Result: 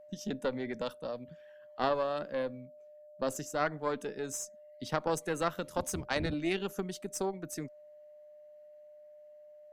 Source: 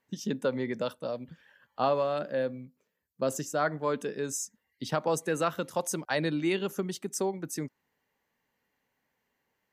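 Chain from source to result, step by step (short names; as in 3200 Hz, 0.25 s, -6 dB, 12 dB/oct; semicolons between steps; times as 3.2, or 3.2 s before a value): 5.66–6.34 octaver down 1 oct, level 0 dB; added harmonics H 2 -8 dB, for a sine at -14 dBFS; whine 600 Hz -47 dBFS; gain -4.5 dB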